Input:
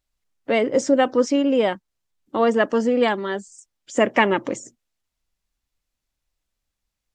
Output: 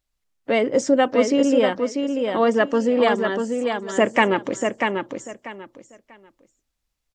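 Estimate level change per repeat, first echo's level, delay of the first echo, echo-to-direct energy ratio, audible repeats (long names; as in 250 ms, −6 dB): −13.0 dB, −5.0 dB, 641 ms, −5.0 dB, 3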